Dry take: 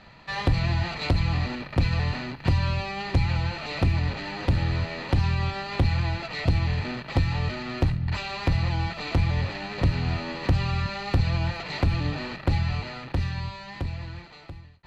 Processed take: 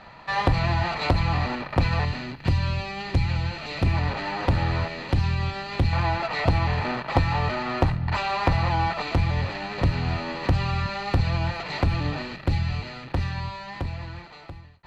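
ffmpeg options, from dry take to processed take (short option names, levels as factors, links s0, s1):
-af "asetnsamples=n=441:p=0,asendcmd='2.05 equalizer g -1.5;3.86 equalizer g 8;4.88 equalizer g -0.5;5.93 equalizer g 11;9.02 equalizer g 4;12.22 equalizer g -2;13.12 equalizer g 5',equalizer=f=920:t=o:w=1.9:g=8.5"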